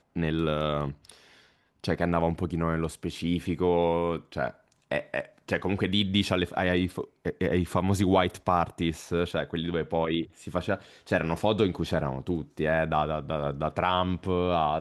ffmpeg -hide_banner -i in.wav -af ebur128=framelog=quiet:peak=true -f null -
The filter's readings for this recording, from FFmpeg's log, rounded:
Integrated loudness:
  I:         -28.3 LUFS
  Threshold: -38.5 LUFS
Loudness range:
  LRA:         2.8 LU
  Threshold: -48.4 LUFS
  LRA low:   -29.6 LUFS
  LRA high:  -26.9 LUFS
True peak:
  Peak:       -8.5 dBFS